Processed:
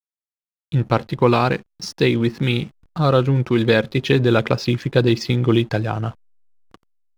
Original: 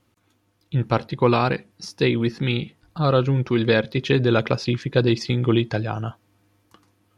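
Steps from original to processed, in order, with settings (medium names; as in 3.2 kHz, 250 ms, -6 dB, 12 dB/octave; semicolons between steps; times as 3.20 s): in parallel at -2.5 dB: compression 12:1, threshold -29 dBFS, peak gain reduction 17 dB; on the sum: hysteresis with a dead band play -37.5 dBFS; trim +1.5 dB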